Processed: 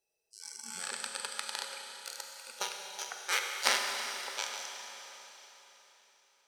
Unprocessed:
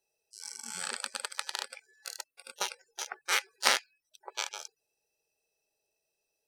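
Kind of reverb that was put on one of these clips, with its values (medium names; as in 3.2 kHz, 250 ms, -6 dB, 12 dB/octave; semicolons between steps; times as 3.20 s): Schroeder reverb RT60 3.9 s, combs from 31 ms, DRR 2 dB; trim -3 dB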